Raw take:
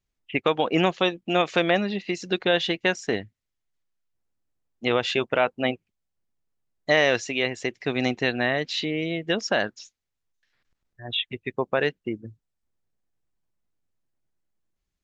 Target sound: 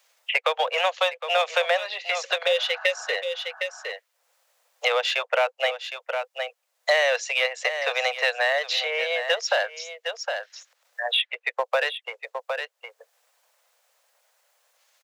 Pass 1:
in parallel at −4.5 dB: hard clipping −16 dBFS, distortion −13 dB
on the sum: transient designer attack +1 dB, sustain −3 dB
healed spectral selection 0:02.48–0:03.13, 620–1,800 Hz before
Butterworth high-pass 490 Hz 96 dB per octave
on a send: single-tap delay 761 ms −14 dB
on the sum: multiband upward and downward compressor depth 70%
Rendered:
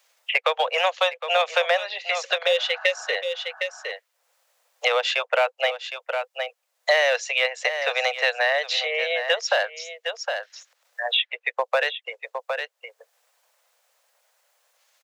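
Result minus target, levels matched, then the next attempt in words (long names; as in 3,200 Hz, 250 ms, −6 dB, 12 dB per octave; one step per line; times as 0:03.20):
hard clipping: distortion −7 dB
in parallel at −4.5 dB: hard clipping −23.5 dBFS, distortion −6 dB
on the sum: transient designer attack +1 dB, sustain −3 dB
healed spectral selection 0:02.48–0:03.13, 620–1,800 Hz before
Butterworth high-pass 490 Hz 96 dB per octave
on a send: single-tap delay 761 ms −14 dB
on the sum: multiband upward and downward compressor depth 70%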